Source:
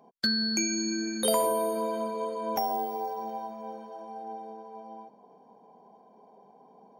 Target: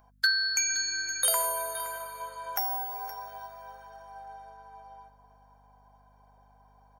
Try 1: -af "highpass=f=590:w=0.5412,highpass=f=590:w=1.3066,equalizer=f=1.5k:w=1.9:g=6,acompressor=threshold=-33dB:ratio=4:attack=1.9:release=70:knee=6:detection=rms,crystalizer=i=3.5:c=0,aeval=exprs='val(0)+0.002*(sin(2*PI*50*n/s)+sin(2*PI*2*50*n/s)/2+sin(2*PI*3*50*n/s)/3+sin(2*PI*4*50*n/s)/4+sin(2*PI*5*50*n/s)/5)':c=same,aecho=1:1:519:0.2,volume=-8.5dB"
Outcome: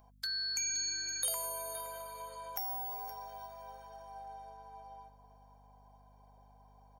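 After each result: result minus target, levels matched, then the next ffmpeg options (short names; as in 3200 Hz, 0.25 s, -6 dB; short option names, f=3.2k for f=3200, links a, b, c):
compressor: peak gain reduction +12 dB; 2000 Hz band -7.0 dB
-af "highpass=f=590:w=0.5412,highpass=f=590:w=1.3066,equalizer=f=1.5k:w=1.9:g=6,crystalizer=i=3.5:c=0,aeval=exprs='val(0)+0.002*(sin(2*PI*50*n/s)+sin(2*PI*2*50*n/s)/2+sin(2*PI*3*50*n/s)/3+sin(2*PI*4*50*n/s)/4+sin(2*PI*5*50*n/s)/5)':c=same,aecho=1:1:519:0.2,volume=-8.5dB"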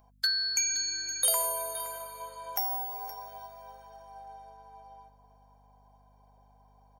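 2000 Hz band -8.0 dB
-af "highpass=f=590:w=0.5412,highpass=f=590:w=1.3066,equalizer=f=1.5k:w=1.9:g=16,crystalizer=i=3.5:c=0,aeval=exprs='val(0)+0.002*(sin(2*PI*50*n/s)+sin(2*PI*2*50*n/s)/2+sin(2*PI*3*50*n/s)/3+sin(2*PI*4*50*n/s)/4+sin(2*PI*5*50*n/s)/5)':c=same,aecho=1:1:519:0.2,volume=-8.5dB"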